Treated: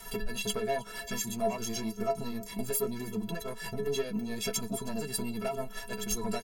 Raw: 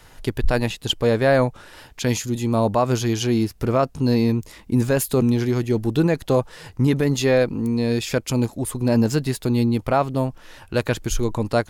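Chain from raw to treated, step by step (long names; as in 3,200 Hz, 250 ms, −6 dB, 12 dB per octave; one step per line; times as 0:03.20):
high-shelf EQ 8,400 Hz +11.5 dB
downward compressor 6 to 1, threshold −28 dBFS, peak gain reduction 15 dB
sine wavefolder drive 12 dB, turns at −12 dBFS
stiff-string resonator 200 Hz, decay 0.29 s, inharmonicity 0.03
time stretch by overlap-add 0.55×, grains 163 ms
single-tap delay 314 ms −20.5 dB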